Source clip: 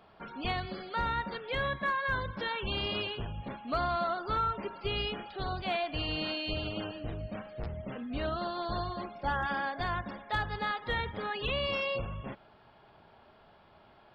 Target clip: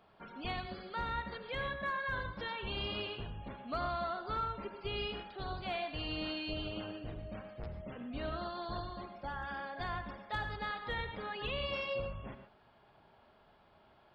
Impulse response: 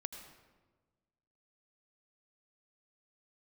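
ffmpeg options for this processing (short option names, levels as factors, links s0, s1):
-filter_complex "[0:a]asettb=1/sr,asplit=3[s0][s1][s2];[s0]atrim=end=8.794[s3];[s1]atrim=start=8.79:end=9.8,asetpts=PTS-STARTPTS,afade=t=in:d=0.004:c=qsin,afade=t=out:st=1.006:d=0.004:c=qsin,acompressor=threshold=0.0178:ratio=2[s4];[s2]atrim=start=9.796[s5];[s3][s4]acrossfade=d=0.004:c1=hsin:c2=qsin[s6];[s6][s5]acrossfade=d=0.004:c1=qsin:c2=hsin[s7];[1:a]atrim=start_sample=2205,atrim=end_sample=6615[s8];[s7][s8]afir=irnorm=-1:irlink=0,volume=0.708"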